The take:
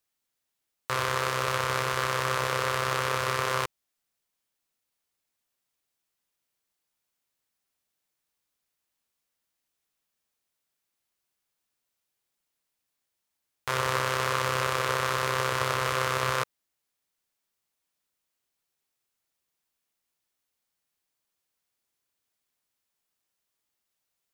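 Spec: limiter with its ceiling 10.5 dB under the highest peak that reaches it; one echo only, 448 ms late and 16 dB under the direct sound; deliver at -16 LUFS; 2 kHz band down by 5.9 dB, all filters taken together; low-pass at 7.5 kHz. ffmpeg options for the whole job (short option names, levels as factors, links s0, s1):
-af "lowpass=7500,equalizer=f=2000:t=o:g=-8,alimiter=limit=0.0841:level=0:latency=1,aecho=1:1:448:0.158,volume=11.2"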